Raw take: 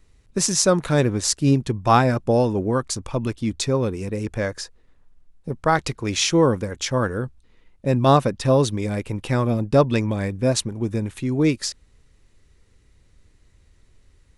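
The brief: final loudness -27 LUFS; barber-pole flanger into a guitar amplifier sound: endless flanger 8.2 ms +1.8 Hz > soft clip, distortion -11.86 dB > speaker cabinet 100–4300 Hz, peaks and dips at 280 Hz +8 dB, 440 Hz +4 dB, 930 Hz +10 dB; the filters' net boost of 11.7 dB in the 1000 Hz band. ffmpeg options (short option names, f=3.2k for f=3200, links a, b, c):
-filter_complex "[0:a]equalizer=f=1k:t=o:g=8,asplit=2[a][b];[b]adelay=8.2,afreqshift=1.8[c];[a][c]amix=inputs=2:normalize=1,asoftclip=threshold=-13.5dB,highpass=100,equalizer=f=280:t=q:w=4:g=8,equalizer=f=440:t=q:w=4:g=4,equalizer=f=930:t=q:w=4:g=10,lowpass=f=4.3k:w=0.5412,lowpass=f=4.3k:w=1.3066,volume=-5dB"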